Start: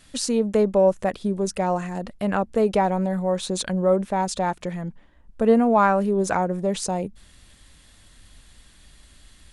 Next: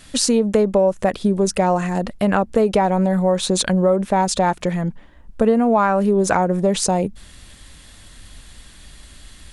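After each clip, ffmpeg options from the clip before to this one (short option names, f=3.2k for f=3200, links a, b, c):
-af "acompressor=threshold=-21dB:ratio=6,volume=8.5dB"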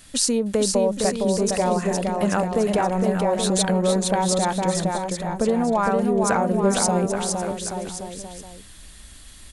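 -filter_complex "[0:a]highshelf=f=7.7k:g=9.5,asplit=2[a][b];[b]aecho=0:1:460|828|1122|1358|1546:0.631|0.398|0.251|0.158|0.1[c];[a][c]amix=inputs=2:normalize=0,volume=-5.5dB"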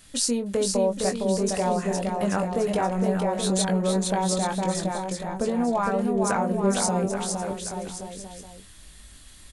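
-filter_complex "[0:a]asplit=2[a][b];[b]adelay=21,volume=-7dB[c];[a][c]amix=inputs=2:normalize=0,volume=-4.5dB"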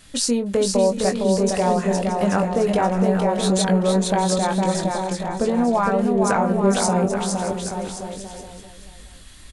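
-af "highshelf=f=8.1k:g=-7.5,aecho=1:1:622:0.211,volume=5dB"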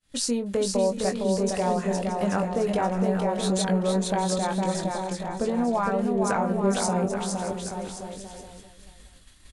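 -af "agate=range=-33dB:threshold=-38dB:ratio=3:detection=peak,volume=-5.5dB"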